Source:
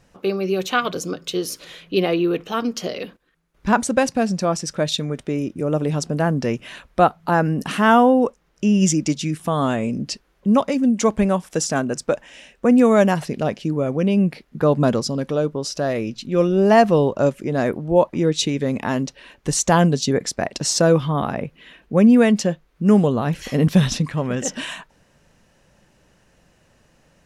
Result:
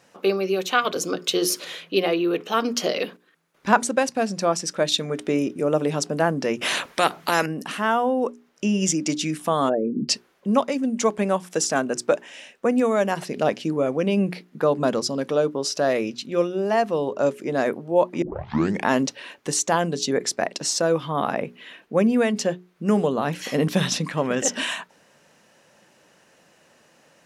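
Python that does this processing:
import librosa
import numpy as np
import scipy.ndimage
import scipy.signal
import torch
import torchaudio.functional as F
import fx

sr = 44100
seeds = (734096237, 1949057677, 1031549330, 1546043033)

y = fx.spectral_comp(x, sr, ratio=2.0, at=(6.61, 7.46))
y = fx.envelope_sharpen(y, sr, power=3.0, at=(9.68, 10.08), fade=0.02)
y = fx.edit(y, sr, fx.tape_start(start_s=18.22, length_s=0.64), tone=tone)
y = scipy.signal.sosfilt(scipy.signal.bessel(2, 290.0, 'highpass', norm='mag', fs=sr, output='sos'), y)
y = fx.hum_notches(y, sr, base_hz=60, count=7)
y = fx.rider(y, sr, range_db=10, speed_s=0.5)
y = y * librosa.db_to_amplitude(-1.0)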